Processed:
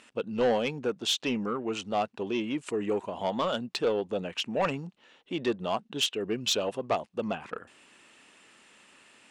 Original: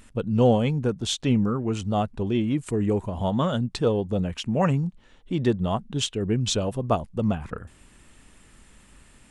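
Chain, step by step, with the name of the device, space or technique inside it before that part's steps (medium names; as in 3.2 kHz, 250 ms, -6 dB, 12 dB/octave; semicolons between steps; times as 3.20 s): intercom (band-pass 360–4600 Hz; peaking EQ 2.7 kHz +5 dB 0.26 oct; saturation -19 dBFS, distortion -14 dB); treble shelf 6.6 kHz +11 dB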